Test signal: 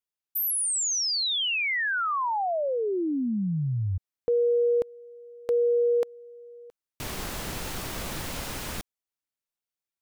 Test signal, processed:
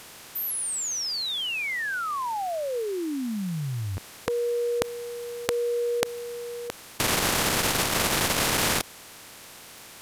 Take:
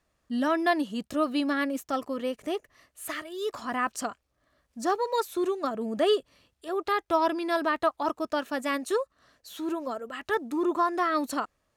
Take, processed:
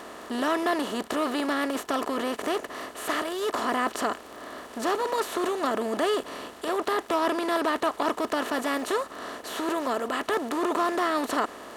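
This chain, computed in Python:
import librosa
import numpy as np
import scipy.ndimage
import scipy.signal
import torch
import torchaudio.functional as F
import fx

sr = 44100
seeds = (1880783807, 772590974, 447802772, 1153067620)

y = fx.bin_compress(x, sr, power=0.4)
y = fx.dmg_crackle(y, sr, seeds[0], per_s=22.0, level_db=-30.0)
y = fx.transformer_sat(y, sr, knee_hz=710.0)
y = F.gain(torch.from_numpy(y), -4.0).numpy()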